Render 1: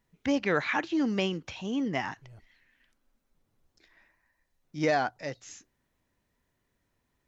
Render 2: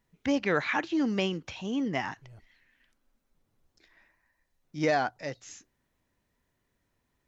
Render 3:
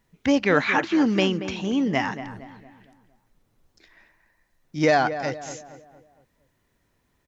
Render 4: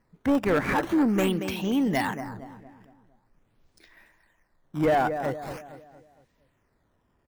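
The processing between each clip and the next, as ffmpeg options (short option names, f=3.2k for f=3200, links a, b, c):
-af anull
-filter_complex "[0:a]asplit=2[a][b];[b]adelay=230,lowpass=f=1.8k:p=1,volume=-11dB,asplit=2[c][d];[d]adelay=230,lowpass=f=1.8k:p=1,volume=0.46,asplit=2[e][f];[f]adelay=230,lowpass=f=1.8k:p=1,volume=0.46,asplit=2[g][h];[h]adelay=230,lowpass=f=1.8k:p=1,volume=0.46,asplit=2[i][j];[j]adelay=230,lowpass=f=1.8k:p=1,volume=0.46[k];[a][c][e][g][i][k]amix=inputs=6:normalize=0,volume=7dB"
-filter_complex "[0:a]acrossover=split=2000[a][b];[b]acrusher=samples=12:mix=1:aa=0.000001:lfo=1:lforange=19.2:lforate=0.45[c];[a][c]amix=inputs=2:normalize=0,asoftclip=type=tanh:threshold=-16dB"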